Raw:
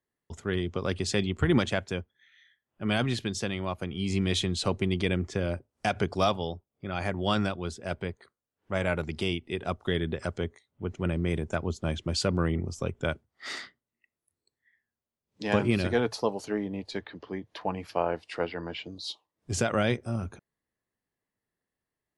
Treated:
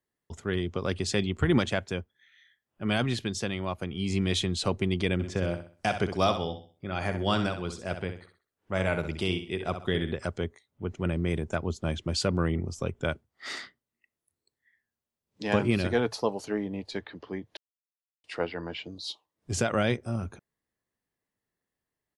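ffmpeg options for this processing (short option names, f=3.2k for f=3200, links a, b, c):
-filter_complex "[0:a]asplit=3[a][b][c];[a]afade=t=out:st=5.19:d=0.02[d];[b]aecho=1:1:64|128|192|256:0.355|0.117|0.0386|0.0128,afade=t=in:st=5.19:d=0.02,afade=t=out:st=10.13:d=0.02[e];[c]afade=t=in:st=10.13:d=0.02[f];[d][e][f]amix=inputs=3:normalize=0,asplit=3[g][h][i];[g]atrim=end=17.57,asetpts=PTS-STARTPTS,afade=t=out:st=17.566:d=0.004:c=hsin[j];[h]atrim=start=17.57:end=18.24,asetpts=PTS-STARTPTS,volume=0[k];[i]atrim=start=18.24,asetpts=PTS-STARTPTS,afade=t=in:d=0.004:c=hsin[l];[j][k][l]concat=n=3:v=0:a=1"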